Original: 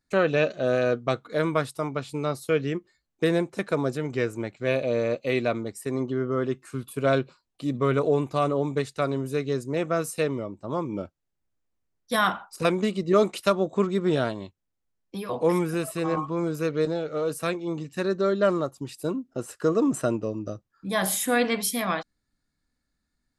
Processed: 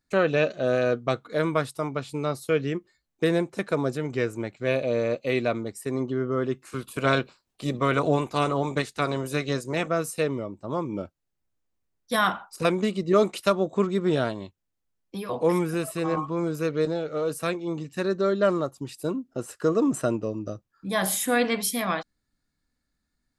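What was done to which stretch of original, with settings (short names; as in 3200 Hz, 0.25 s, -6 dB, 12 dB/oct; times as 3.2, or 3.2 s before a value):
6.61–9.87 spectral limiter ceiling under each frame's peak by 13 dB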